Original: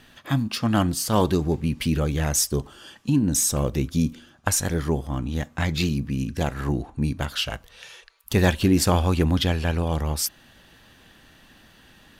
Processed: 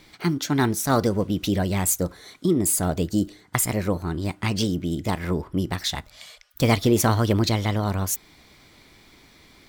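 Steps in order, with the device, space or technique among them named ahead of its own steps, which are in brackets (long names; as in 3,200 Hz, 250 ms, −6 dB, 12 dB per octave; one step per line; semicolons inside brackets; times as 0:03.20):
nightcore (speed change +26%)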